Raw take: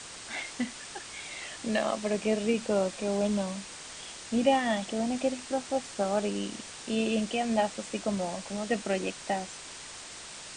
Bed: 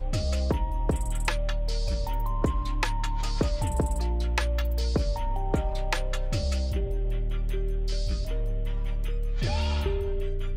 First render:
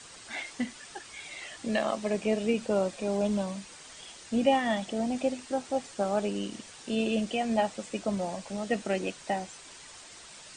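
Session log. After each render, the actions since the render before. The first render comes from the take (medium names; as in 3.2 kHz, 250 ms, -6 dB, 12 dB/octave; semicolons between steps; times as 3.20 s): noise reduction 7 dB, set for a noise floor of -44 dBFS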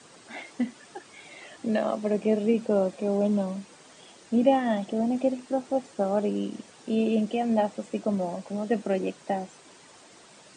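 high-pass 170 Hz 12 dB/octave; tilt shelf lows +6.5 dB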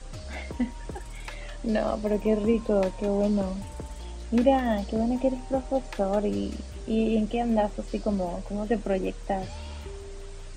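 add bed -12 dB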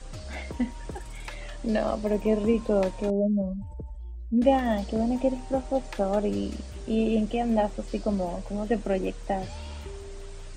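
3.10–4.42 s: spectral contrast enhancement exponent 2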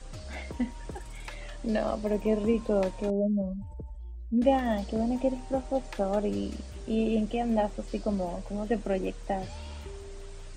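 trim -2.5 dB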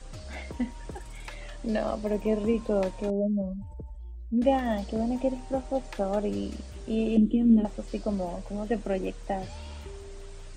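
7.17–7.65 s: FFT filter 140 Hz 0 dB, 300 Hz +15 dB, 750 Hz -22 dB, 1.2 kHz -9 dB, 2.1 kHz -16 dB, 3.4 kHz -4 dB, 5.2 kHz -25 dB, 7.6 kHz -12 dB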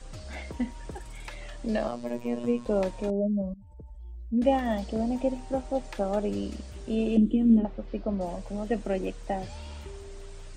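1.88–2.66 s: robot voice 120 Hz; 3.54–4.15 s: fade in, from -16 dB; 7.58–8.21 s: distance through air 300 m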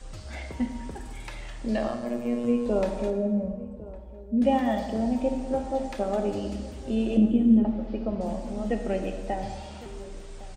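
echo from a far wall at 190 m, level -18 dB; plate-style reverb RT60 1.6 s, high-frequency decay 0.65×, DRR 5 dB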